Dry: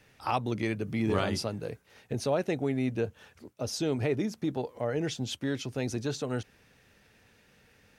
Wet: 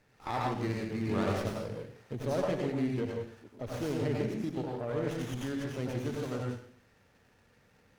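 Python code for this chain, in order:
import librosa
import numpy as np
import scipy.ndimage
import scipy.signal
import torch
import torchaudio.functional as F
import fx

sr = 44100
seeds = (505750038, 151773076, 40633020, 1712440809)

y = fx.rev_plate(x, sr, seeds[0], rt60_s=0.58, hf_ratio=0.95, predelay_ms=80, drr_db=-2.0)
y = fx.running_max(y, sr, window=9)
y = y * librosa.db_to_amplitude(-6.0)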